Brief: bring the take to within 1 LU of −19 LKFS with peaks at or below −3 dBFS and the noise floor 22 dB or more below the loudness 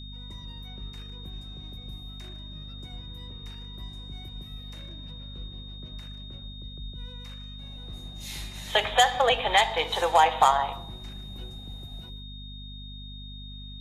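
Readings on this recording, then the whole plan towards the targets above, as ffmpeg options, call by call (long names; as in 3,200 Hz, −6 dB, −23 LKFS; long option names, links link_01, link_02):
mains hum 50 Hz; hum harmonics up to 250 Hz; level of the hum −39 dBFS; interfering tone 3,700 Hz; level of the tone −44 dBFS; integrated loudness −24.0 LKFS; sample peak −5.5 dBFS; target loudness −19.0 LKFS
→ -af "bandreject=frequency=50:width_type=h:width=4,bandreject=frequency=100:width_type=h:width=4,bandreject=frequency=150:width_type=h:width=4,bandreject=frequency=200:width_type=h:width=4,bandreject=frequency=250:width_type=h:width=4"
-af "bandreject=frequency=3700:width=30"
-af "volume=5dB,alimiter=limit=-3dB:level=0:latency=1"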